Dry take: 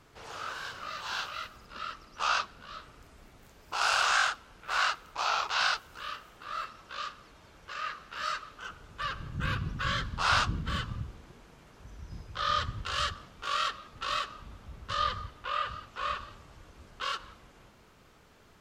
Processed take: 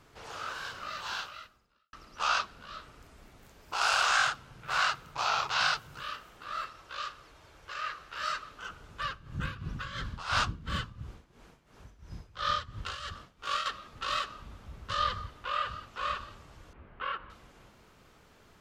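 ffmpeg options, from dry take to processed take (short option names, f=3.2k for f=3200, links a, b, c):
-filter_complex "[0:a]asettb=1/sr,asplit=3[a][b][c];[a]atrim=end=4.184[d];[b]atrim=start=4.18:end=6.02,asetpts=PTS-STARTPTS,afade=t=in:d=0.004:c=qsin,afade=t=out:st=1.836:d=0.004:c=qsin,equalizer=f=130:t=o:w=0.77:g=14.5[e];[c]atrim=start=6.016[f];[d][e]acrossfade=d=0.004:c1=hsin:c2=qsin[g];[g][f]acrossfade=d=0.004:c1=qsin:c2=hsin,asettb=1/sr,asplit=3[h][i][j];[h]atrim=end=6.684[k];[i]atrim=start=6.68:end=8.23,asetpts=PTS-STARTPTS,afade=t=in:d=0.004:c=qsin,afade=t=out:st=1.546:d=0.004:c=qsin,equalizer=f=210:w=2.7:g=-10[l];[j]atrim=start=8.226[m];[k][l]acrossfade=d=0.004:c1=hsin:c2=qsin[n];[n][m]acrossfade=d=0.004:c1=qsin:c2=hsin,asettb=1/sr,asplit=3[o][p][q];[o]atrim=end=9.044[r];[p]atrim=start=9.04:end=13.66,asetpts=PTS-STARTPTS,afade=t=in:d=0.004:c=qsin,afade=t=out:st=4.616:d=0.004:c=qsin,tremolo=f=2.9:d=0.79[s];[q]atrim=start=13.656[t];[r][s]acrossfade=d=0.004:c1=hsin:c2=qsin[u];[u][t]acrossfade=d=0.004:c1=qsin:c2=hsin,asettb=1/sr,asplit=3[v][w][x];[v]atrim=end=16.734[y];[w]atrim=start=16.73:end=17.3,asetpts=PTS-STARTPTS,afade=t=in:d=0.004:c=qsin,afade=t=out:st=0.566:d=0.004:c=qsin,lowpass=f=2.5k:w=0.5412,lowpass=f=2.5k:w=1.3066[z];[x]atrim=start=17.296[aa];[y][z]acrossfade=d=0.004:c1=hsin:c2=qsin[ab];[ab][aa]acrossfade=d=0.004:c1=qsin:c2=hsin,asplit=2[ac][ad];[ac]atrim=end=1.93,asetpts=PTS-STARTPTS,afade=t=out:st=1.08:d=0.85:c=qua[ae];[ad]atrim=start=1.93,asetpts=PTS-STARTPTS,afade=t=in:d=0.004:c=hsin[af];[ae][af]concat=n=2:v=0:a=1"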